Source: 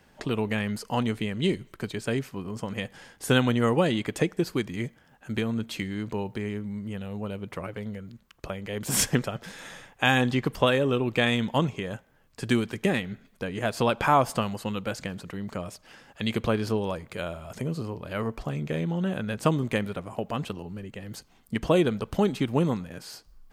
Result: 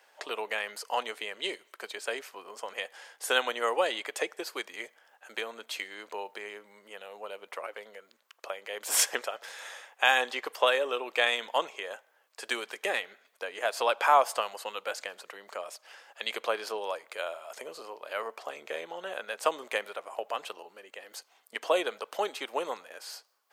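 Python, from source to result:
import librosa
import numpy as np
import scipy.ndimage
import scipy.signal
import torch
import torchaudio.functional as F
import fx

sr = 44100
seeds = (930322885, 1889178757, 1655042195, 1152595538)

y = scipy.signal.sosfilt(scipy.signal.butter(4, 520.0, 'highpass', fs=sr, output='sos'), x)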